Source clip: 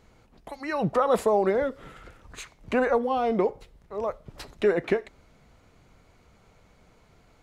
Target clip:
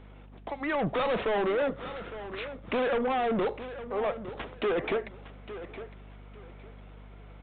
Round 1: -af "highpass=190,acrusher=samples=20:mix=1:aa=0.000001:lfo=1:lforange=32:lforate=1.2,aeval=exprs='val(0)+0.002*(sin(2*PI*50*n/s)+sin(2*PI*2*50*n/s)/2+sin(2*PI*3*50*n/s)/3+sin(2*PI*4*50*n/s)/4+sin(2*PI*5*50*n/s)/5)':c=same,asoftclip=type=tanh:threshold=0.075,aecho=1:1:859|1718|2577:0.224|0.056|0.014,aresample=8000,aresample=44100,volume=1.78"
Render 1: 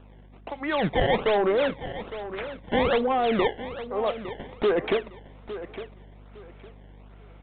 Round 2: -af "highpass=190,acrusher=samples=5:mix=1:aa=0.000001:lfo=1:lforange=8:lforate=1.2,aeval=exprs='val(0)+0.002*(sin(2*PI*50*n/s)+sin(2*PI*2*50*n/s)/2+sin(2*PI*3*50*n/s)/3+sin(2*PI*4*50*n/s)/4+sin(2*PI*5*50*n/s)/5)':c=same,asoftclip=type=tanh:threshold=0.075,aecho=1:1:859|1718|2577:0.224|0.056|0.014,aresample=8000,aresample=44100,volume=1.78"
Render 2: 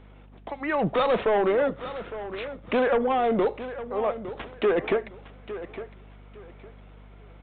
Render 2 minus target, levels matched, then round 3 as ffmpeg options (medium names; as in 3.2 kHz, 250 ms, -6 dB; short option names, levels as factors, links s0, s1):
saturation: distortion -5 dB
-af "highpass=190,acrusher=samples=5:mix=1:aa=0.000001:lfo=1:lforange=8:lforate=1.2,aeval=exprs='val(0)+0.002*(sin(2*PI*50*n/s)+sin(2*PI*2*50*n/s)/2+sin(2*PI*3*50*n/s)/3+sin(2*PI*4*50*n/s)/4+sin(2*PI*5*50*n/s)/5)':c=same,asoftclip=type=tanh:threshold=0.0316,aecho=1:1:859|1718|2577:0.224|0.056|0.014,aresample=8000,aresample=44100,volume=1.78"